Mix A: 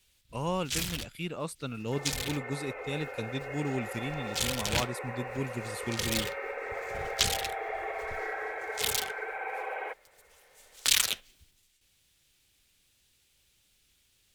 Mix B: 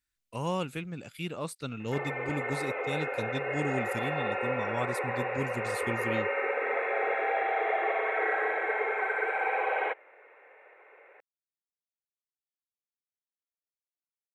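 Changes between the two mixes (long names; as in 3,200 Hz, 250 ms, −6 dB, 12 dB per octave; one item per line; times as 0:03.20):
first sound: muted
second sound +7.0 dB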